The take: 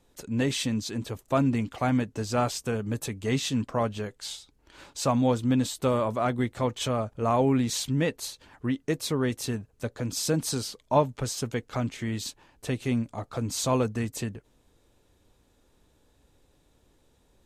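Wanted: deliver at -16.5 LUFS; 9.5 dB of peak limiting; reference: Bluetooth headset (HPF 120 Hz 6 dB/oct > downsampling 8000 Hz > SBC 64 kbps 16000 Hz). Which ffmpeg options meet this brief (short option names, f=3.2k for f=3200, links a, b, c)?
-af "alimiter=limit=-18.5dB:level=0:latency=1,highpass=f=120:p=1,aresample=8000,aresample=44100,volume=15dB" -ar 16000 -c:a sbc -b:a 64k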